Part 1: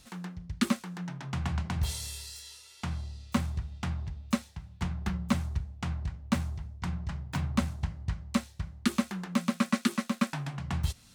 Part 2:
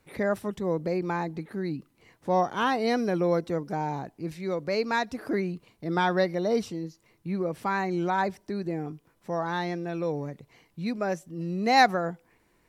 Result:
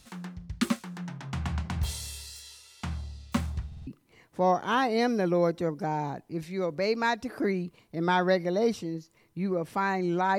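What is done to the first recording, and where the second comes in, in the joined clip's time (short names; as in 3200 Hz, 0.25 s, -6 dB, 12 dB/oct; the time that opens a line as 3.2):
part 1
3.67 stutter in place 0.05 s, 4 plays
3.87 switch to part 2 from 1.76 s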